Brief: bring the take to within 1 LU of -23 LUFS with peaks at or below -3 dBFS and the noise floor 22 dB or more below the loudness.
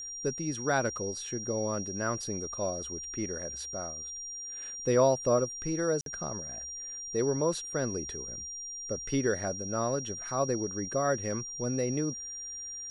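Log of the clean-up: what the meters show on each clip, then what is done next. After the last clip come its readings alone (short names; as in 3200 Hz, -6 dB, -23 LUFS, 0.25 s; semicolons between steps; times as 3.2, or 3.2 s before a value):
dropouts 1; longest dropout 52 ms; steady tone 5700 Hz; tone level -38 dBFS; loudness -32.0 LUFS; peak -13.0 dBFS; loudness target -23.0 LUFS
-> interpolate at 6.01, 52 ms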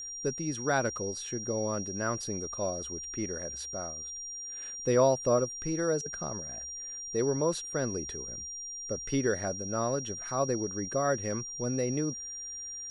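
dropouts 0; steady tone 5700 Hz; tone level -38 dBFS
-> notch 5700 Hz, Q 30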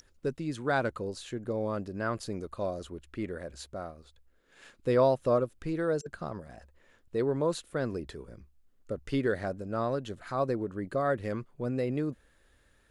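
steady tone none; loudness -32.5 LUFS; peak -13.0 dBFS; loudness target -23.0 LUFS
-> gain +9.5 dB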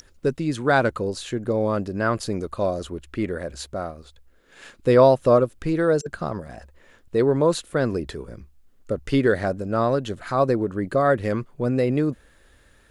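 loudness -23.0 LUFS; peak -3.5 dBFS; noise floor -56 dBFS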